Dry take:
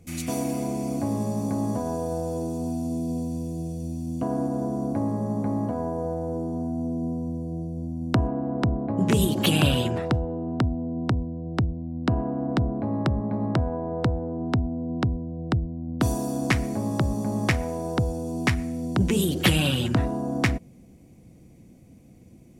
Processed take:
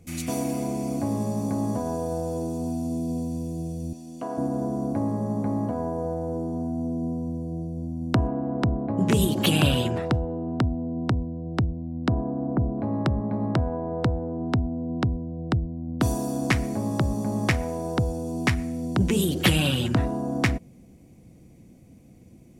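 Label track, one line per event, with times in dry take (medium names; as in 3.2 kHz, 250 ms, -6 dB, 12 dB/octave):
3.930000	4.380000	frequency weighting A
12.080000	12.780000	Gaussian low-pass sigma 6.7 samples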